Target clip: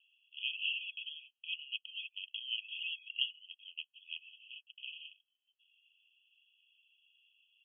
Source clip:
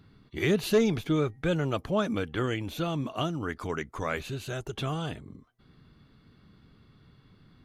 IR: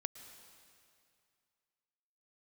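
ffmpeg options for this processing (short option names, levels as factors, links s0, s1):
-filter_complex "[0:a]asplit=2[s0][s1];[s1]alimiter=level_in=1.19:limit=0.0631:level=0:latency=1,volume=0.841,volume=0.794[s2];[s0][s2]amix=inputs=2:normalize=0,asettb=1/sr,asplit=3[s3][s4][s5];[s3]atrim=end=4.124[s6];[s4]atrim=start=4.12:end=5.2,asetpts=PTS-STARTPTS,afade=t=in:d=0.004:c=qsin,afade=t=out:st=1.076:d=0.004:c=qsin,aeval=exprs='0.15*(cos(1*acos(clip(val(0)/0.15,-1,1)))-cos(1*PI/2))+0.0596*(cos(3*acos(clip(val(0)/0.15,-1,1)))-cos(3*PI/2))':c=same[s7];[s5]atrim=start=5.196[s8];[s6][s7]acrossfade=d=0.004:c1=hsin:c2=qsin[s9];[s9][s8]acrossfade=d=0.004:c1=qsin:c2=hsin,asuperpass=centerf=2900:order=20:qfactor=3.7,volume=1.5"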